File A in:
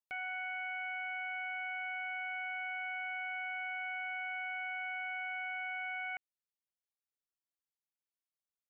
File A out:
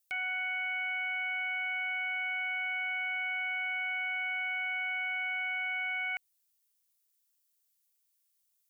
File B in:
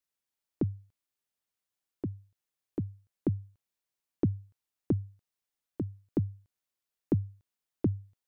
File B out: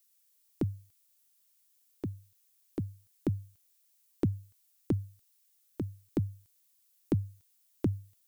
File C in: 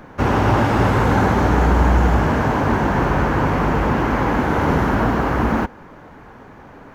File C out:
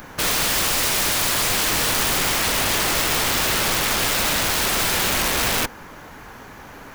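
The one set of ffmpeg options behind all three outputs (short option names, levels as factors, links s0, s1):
-af "crystalizer=i=8.5:c=0,aeval=exprs='(mod(4.73*val(0)+1,2)-1)/4.73':c=same,lowshelf=f=62:g=6,volume=0.75"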